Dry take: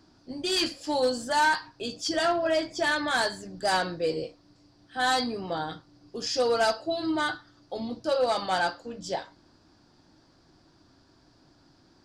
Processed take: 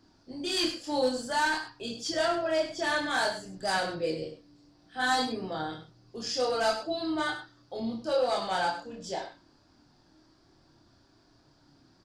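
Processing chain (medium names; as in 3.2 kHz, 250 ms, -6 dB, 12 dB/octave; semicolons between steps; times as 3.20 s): chorus voices 2, 0.51 Hz, delay 27 ms, depth 1.6 ms; loudspeakers at several distances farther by 12 m -10 dB, 34 m -11 dB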